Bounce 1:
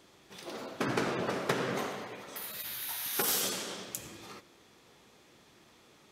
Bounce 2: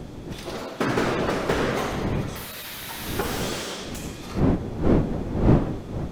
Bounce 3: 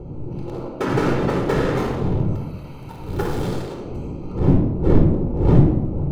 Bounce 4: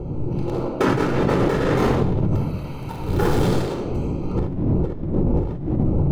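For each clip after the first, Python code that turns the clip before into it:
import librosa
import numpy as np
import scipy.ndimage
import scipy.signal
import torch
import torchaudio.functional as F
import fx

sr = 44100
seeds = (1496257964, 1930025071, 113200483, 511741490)

y1 = fx.dmg_wind(x, sr, seeds[0], corner_hz=290.0, level_db=-35.0)
y1 = fx.slew_limit(y1, sr, full_power_hz=44.0)
y1 = y1 * 10.0 ** (8.5 / 20.0)
y2 = fx.wiener(y1, sr, points=25)
y2 = fx.room_shoebox(y2, sr, seeds[1], volume_m3=3100.0, walls='furnished', distance_m=4.3)
y2 = y2 * 10.0 ** (-1.0 / 20.0)
y3 = fx.over_compress(y2, sr, threshold_db=-22.0, ratio=-1.0)
y3 = y3 * 10.0 ** (2.0 / 20.0)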